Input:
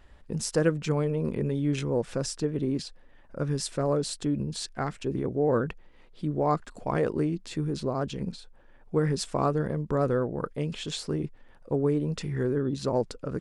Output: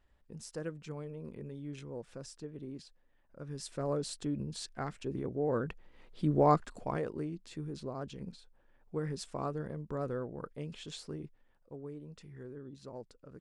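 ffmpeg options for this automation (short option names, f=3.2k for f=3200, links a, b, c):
-af "volume=1dB,afade=t=in:st=3.44:d=0.46:silence=0.375837,afade=t=in:st=5.59:d=0.82:silence=0.375837,afade=t=out:st=6.41:d=0.64:silence=0.251189,afade=t=out:st=10.99:d=0.74:silence=0.375837"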